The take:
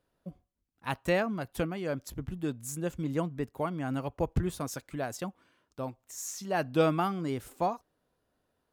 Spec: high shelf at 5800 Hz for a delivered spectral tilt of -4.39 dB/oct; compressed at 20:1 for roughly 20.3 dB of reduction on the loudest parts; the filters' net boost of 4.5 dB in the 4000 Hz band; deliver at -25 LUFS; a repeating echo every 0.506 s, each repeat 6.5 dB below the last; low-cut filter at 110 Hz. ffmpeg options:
-af "highpass=110,equalizer=f=4k:t=o:g=8.5,highshelf=f=5.8k:g=-7,acompressor=threshold=-40dB:ratio=20,aecho=1:1:506|1012|1518|2024|2530|3036:0.473|0.222|0.105|0.0491|0.0231|0.0109,volume=20dB"

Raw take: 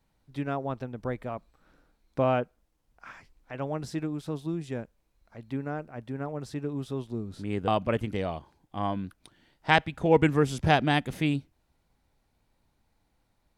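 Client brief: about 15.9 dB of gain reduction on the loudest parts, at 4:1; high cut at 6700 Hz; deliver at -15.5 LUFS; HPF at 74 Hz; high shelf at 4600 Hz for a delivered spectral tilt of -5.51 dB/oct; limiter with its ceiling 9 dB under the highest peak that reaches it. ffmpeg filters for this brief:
-af "highpass=74,lowpass=6.7k,highshelf=f=4.6k:g=-6,acompressor=threshold=-36dB:ratio=4,volume=27dB,alimiter=limit=-3dB:level=0:latency=1"

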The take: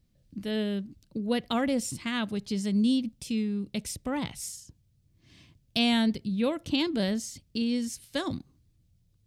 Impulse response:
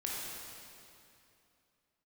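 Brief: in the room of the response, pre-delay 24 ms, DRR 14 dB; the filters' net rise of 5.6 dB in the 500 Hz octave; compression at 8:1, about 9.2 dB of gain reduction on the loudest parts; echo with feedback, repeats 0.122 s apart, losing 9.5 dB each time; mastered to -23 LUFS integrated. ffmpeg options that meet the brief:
-filter_complex "[0:a]equalizer=f=500:t=o:g=6.5,acompressor=threshold=-28dB:ratio=8,aecho=1:1:122|244|366|488:0.335|0.111|0.0365|0.012,asplit=2[a][b];[1:a]atrim=start_sample=2205,adelay=24[c];[b][c]afir=irnorm=-1:irlink=0,volume=-17.5dB[d];[a][d]amix=inputs=2:normalize=0,volume=10dB"

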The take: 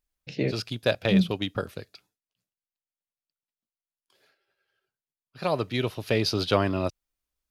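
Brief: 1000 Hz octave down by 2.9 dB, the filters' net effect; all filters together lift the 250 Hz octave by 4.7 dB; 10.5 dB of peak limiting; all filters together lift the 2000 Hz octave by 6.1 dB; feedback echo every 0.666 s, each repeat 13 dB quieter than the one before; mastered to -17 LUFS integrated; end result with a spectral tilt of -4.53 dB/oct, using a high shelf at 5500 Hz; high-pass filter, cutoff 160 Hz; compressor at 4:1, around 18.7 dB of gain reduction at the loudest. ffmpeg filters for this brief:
-af "highpass=160,equalizer=f=250:t=o:g=8.5,equalizer=f=1k:t=o:g=-8,equalizer=f=2k:t=o:g=8.5,highshelf=f=5.5k:g=8.5,acompressor=threshold=-36dB:ratio=4,alimiter=level_in=5.5dB:limit=-24dB:level=0:latency=1,volume=-5.5dB,aecho=1:1:666|1332|1998:0.224|0.0493|0.0108,volume=24.5dB"

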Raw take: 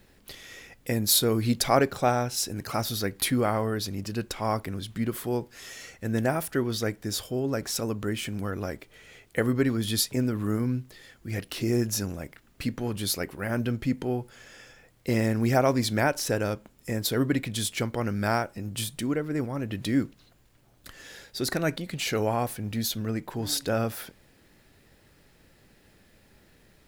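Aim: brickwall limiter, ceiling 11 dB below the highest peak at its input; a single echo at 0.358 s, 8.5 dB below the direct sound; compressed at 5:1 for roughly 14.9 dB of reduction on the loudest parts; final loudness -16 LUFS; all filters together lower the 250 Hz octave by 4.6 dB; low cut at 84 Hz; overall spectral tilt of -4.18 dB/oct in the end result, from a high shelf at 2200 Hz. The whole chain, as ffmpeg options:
-af "highpass=84,equalizer=f=250:t=o:g=-5.5,highshelf=f=2.2k:g=3,acompressor=threshold=-33dB:ratio=5,alimiter=level_in=2dB:limit=-24dB:level=0:latency=1,volume=-2dB,aecho=1:1:358:0.376,volume=21.5dB"

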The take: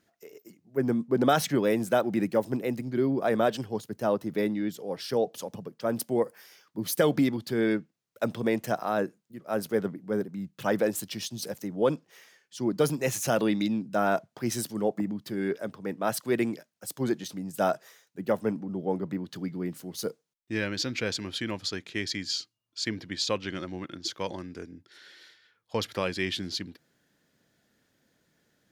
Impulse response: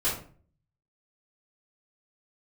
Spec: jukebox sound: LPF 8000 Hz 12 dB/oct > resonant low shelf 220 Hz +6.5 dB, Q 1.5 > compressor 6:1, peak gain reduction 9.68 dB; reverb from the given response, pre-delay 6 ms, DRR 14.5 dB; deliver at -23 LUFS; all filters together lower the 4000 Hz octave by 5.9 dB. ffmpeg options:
-filter_complex "[0:a]equalizer=f=4k:t=o:g=-7,asplit=2[a][b];[1:a]atrim=start_sample=2205,adelay=6[c];[b][c]afir=irnorm=-1:irlink=0,volume=-24dB[d];[a][d]amix=inputs=2:normalize=0,lowpass=8k,lowshelf=f=220:t=q:w=1.5:g=6.5,acompressor=threshold=-27dB:ratio=6,volume=10.5dB"

